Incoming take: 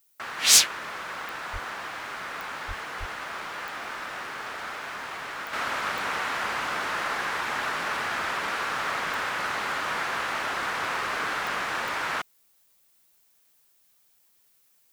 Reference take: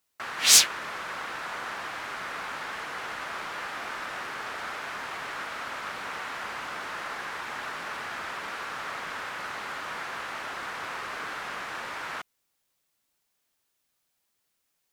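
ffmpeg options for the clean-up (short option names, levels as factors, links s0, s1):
-filter_complex "[0:a]adeclick=t=4,asplit=3[s0][s1][s2];[s0]afade=t=out:st=1.52:d=0.02[s3];[s1]highpass=f=140:w=0.5412,highpass=f=140:w=1.3066,afade=t=in:st=1.52:d=0.02,afade=t=out:st=1.64:d=0.02[s4];[s2]afade=t=in:st=1.64:d=0.02[s5];[s3][s4][s5]amix=inputs=3:normalize=0,asplit=3[s6][s7][s8];[s6]afade=t=out:st=2.67:d=0.02[s9];[s7]highpass=f=140:w=0.5412,highpass=f=140:w=1.3066,afade=t=in:st=2.67:d=0.02,afade=t=out:st=2.79:d=0.02[s10];[s8]afade=t=in:st=2.79:d=0.02[s11];[s9][s10][s11]amix=inputs=3:normalize=0,asplit=3[s12][s13][s14];[s12]afade=t=out:st=2.99:d=0.02[s15];[s13]highpass=f=140:w=0.5412,highpass=f=140:w=1.3066,afade=t=in:st=2.99:d=0.02,afade=t=out:st=3.11:d=0.02[s16];[s14]afade=t=in:st=3.11:d=0.02[s17];[s15][s16][s17]amix=inputs=3:normalize=0,agate=range=0.0891:threshold=0.00158,asetnsamples=n=441:p=0,asendcmd='5.53 volume volume -6.5dB',volume=1"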